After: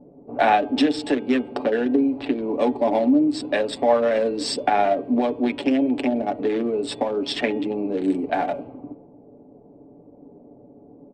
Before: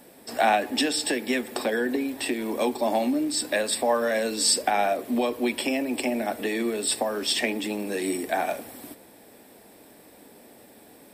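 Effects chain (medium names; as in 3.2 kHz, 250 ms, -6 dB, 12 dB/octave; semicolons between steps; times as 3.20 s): local Wiener filter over 25 samples; level-controlled noise filter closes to 570 Hz, open at -25.5 dBFS; low-pass 3.9 kHz 12 dB/octave; bass shelf 470 Hz +5.5 dB; comb 7 ms, depth 50%; de-hum 315.7 Hz, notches 11; trim +2 dB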